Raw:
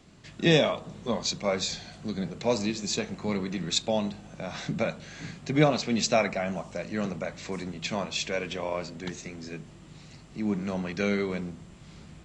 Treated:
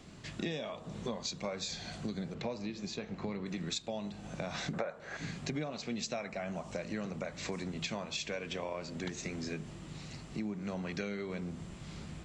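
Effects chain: 4.73–5.17 band shelf 850 Hz +13.5 dB 2.7 oct; compressor 12:1, threshold -37 dBFS, peak gain reduction 25.5 dB; 2.34–3.46 air absorption 130 m; gain +2.5 dB

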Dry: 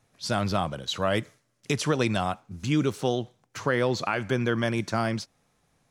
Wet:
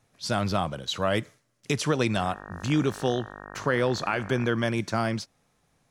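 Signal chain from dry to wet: 2.14–4.46 buzz 50 Hz, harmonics 37, -43 dBFS 0 dB/oct

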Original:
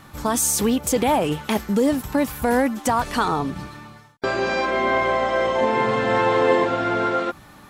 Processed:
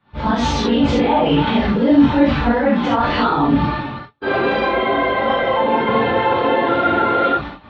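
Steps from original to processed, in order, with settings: phase scrambler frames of 50 ms; gate -43 dBFS, range -30 dB; steep low-pass 3900 Hz 36 dB/oct; transient shaper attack -8 dB, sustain +5 dB; limiter -22.5 dBFS, peak gain reduction 13.5 dB; non-linear reverb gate 0.1 s flat, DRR -6 dB; gain +6 dB

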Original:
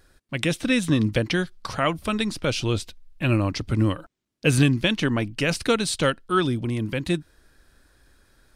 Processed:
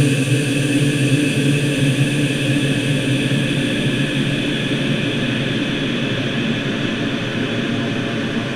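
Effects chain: Paulstretch 16×, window 1.00 s, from 4.6; gain +3 dB

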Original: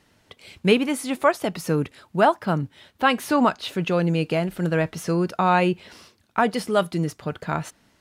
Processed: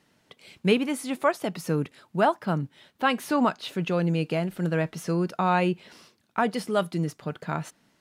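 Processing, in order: resonant low shelf 110 Hz -7.5 dB, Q 1.5; gain -4.5 dB

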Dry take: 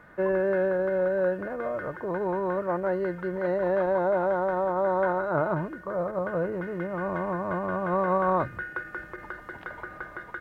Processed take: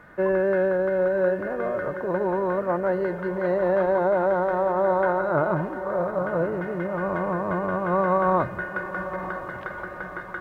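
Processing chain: diffused feedback echo 0.974 s, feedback 41%, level -11 dB; gain +3 dB

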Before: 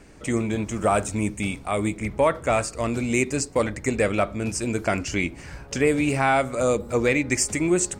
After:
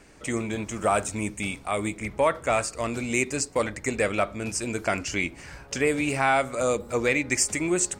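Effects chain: low shelf 470 Hz -6.5 dB

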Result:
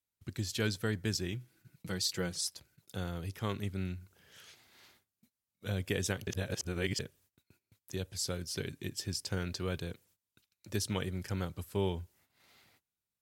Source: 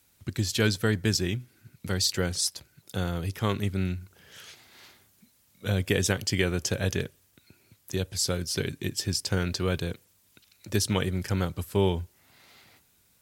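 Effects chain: gate -57 dBFS, range -19 dB; 1.32–2.42 comb 6.1 ms, depth 51%; 6.27–6.99 reverse; gain -8.5 dB

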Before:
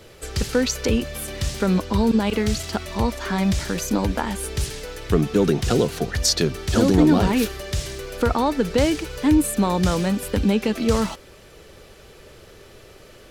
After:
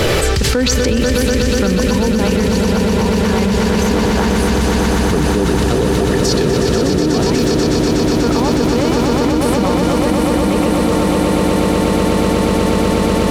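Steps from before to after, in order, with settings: high shelf 5800 Hz -6 dB; swelling echo 0.122 s, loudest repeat 8, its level -6 dB; fast leveller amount 100%; gain -3.5 dB

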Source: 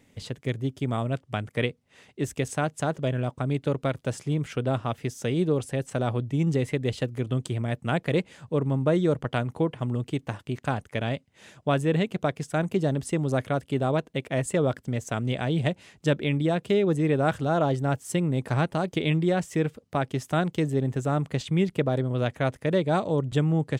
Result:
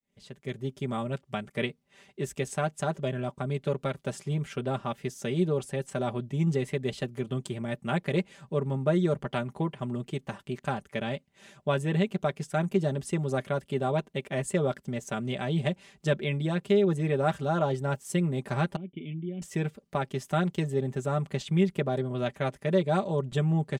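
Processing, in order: opening faded in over 0.68 s; 18.76–19.42 vocal tract filter i; comb 5.1 ms, depth 72%; gain -4.5 dB

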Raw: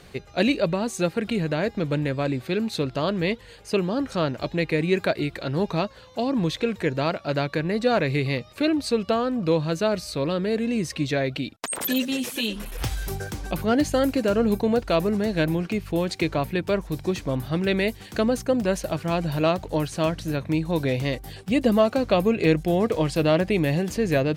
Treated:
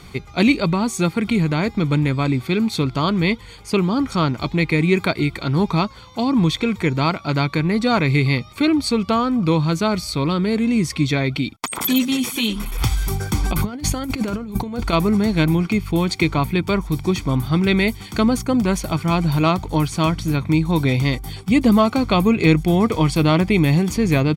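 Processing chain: comb 0.9 ms, depth 63%; 13.32–14.93 negative-ratio compressor -26 dBFS, ratio -0.5; gain +5 dB

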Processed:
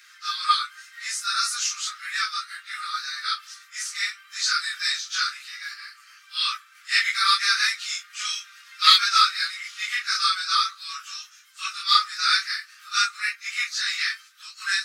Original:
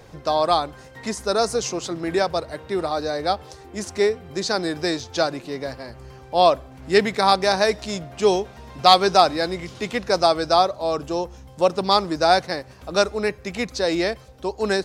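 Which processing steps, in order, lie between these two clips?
phase scrambler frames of 0.1 s; Chebyshev high-pass 1200 Hz, order 8; gain +4.5 dB

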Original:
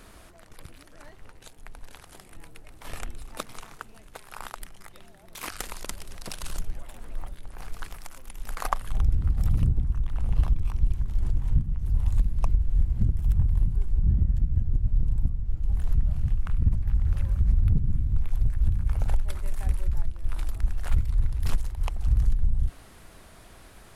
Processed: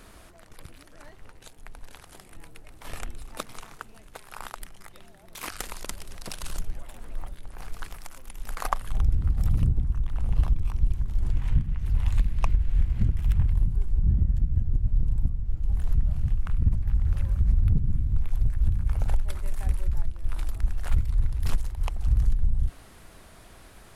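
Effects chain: 11.3–13.53 bell 2300 Hz +11 dB 2 oct

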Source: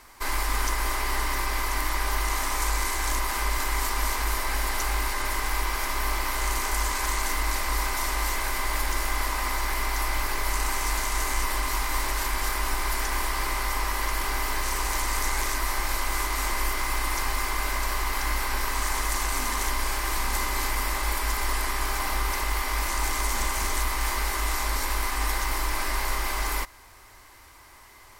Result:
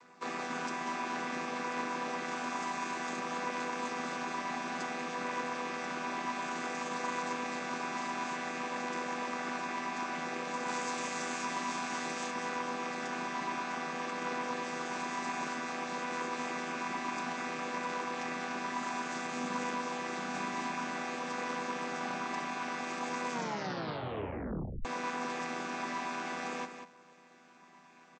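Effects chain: chord vocoder minor triad, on E3; 10.68–12.31 high shelf 5700 Hz +10 dB; echo 0.19 s -9 dB; 23.31 tape stop 1.54 s; gain -6 dB

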